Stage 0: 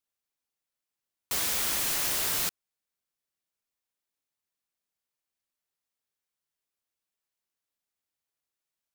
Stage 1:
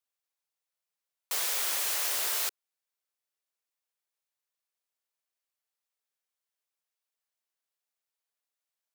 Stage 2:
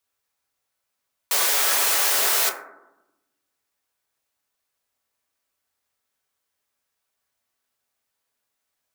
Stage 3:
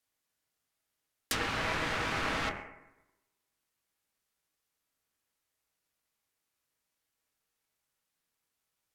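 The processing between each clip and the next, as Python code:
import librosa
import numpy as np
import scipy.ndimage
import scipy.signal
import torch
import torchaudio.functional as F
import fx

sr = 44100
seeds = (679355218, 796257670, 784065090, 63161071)

y1 = scipy.signal.sosfilt(scipy.signal.butter(4, 420.0, 'highpass', fs=sr, output='sos'), x)
y1 = F.gain(torch.from_numpy(y1), -1.5).numpy()
y2 = fx.rev_fdn(y1, sr, rt60_s=0.91, lf_ratio=1.6, hf_ratio=0.3, size_ms=71.0, drr_db=0.0)
y2 = F.gain(torch.from_numpy(y2), 9.0).numpy()
y3 = y2 * np.sin(2.0 * np.pi * 680.0 * np.arange(len(y2)) / sr)
y3 = fx.env_lowpass_down(y3, sr, base_hz=2200.0, full_db=-21.0)
y3 = F.gain(torch.from_numpy(y3), -1.0).numpy()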